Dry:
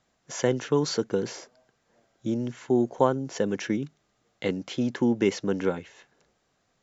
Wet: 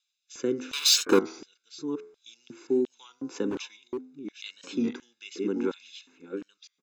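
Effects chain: chunks repeated in reverse 668 ms, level -7 dB; rotary cabinet horn 0.8 Hz; 0.73–1.20 s: waveshaping leveller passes 5; comb 0.8 ms, depth 79%; de-hum 85.62 Hz, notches 26; LFO high-pass square 1.4 Hz 310–3300 Hz; 3.50–4.59 s: hard clipper -21.5 dBFS, distortion -24 dB; warped record 33 1/3 rpm, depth 100 cents; trim -5.5 dB

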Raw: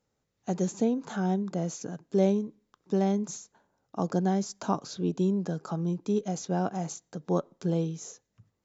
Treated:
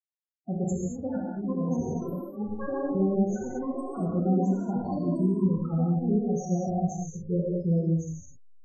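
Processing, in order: send-on-delta sampling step -37 dBFS; peaking EQ 100 Hz +10.5 dB 0.78 oct; ever faster or slower copies 613 ms, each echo +6 st, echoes 3, each echo -6 dB; treble shelf 3.1 kHz +5.5 dB; loudest bins only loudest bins 8; 0.64–2.95 s: compressor with a negative ratio -31 dBFS, ratio -0.5; gated-style reverb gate 260 ms flat, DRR -3.5 dB; trim -3.5 dB

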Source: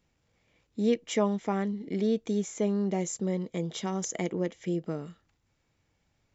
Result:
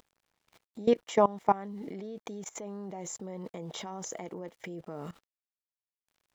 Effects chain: gate -59 dBFS, range -33 dB; peaking EQ 870 Hz +12.5 dB 1.4 oct; upward compressor, threshold -24 dBFS; small samples zeroed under -50.5 dBFS; level held to a coarse grid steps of 20 dB

